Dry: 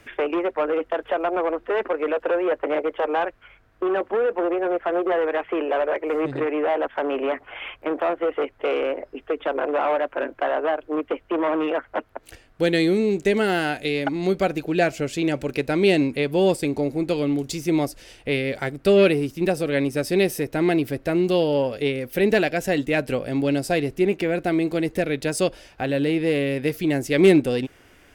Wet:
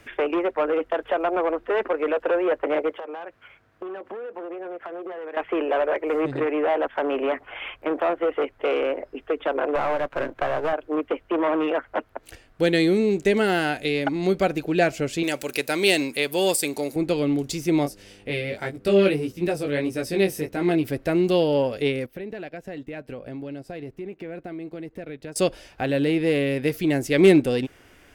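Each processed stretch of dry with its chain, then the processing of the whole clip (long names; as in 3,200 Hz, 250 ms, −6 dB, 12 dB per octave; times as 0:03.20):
0:02.90–0:05.37: running median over 3 samples + downward compressor 16 to 1, threshold −31 dBFS + high-pass filter 93 Hz
0:09.75–0:10.73: gain on one half-wave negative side −7 dB + multiband upward and downward compressor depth 70%
0:15.23–0:16.96: RIAA equalisation recording + floating-point word with a short mantissa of 6 bits
0:17.83–0:20.83: chorus effect 1.6 Hz, delay 16.5 ms, depth 4.6 ms + hum with harmonics 100 Hz, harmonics 5, −53 dBFS −1 dB per octave
0:22.06–0:25.36: parametric band 9,500 Hz −10.5 dB 2.4 octaves + downward compressor 5 to 1, threshold −33 dBFS + noise gate −39 dBFS, range −11 dB
whole clip: no processing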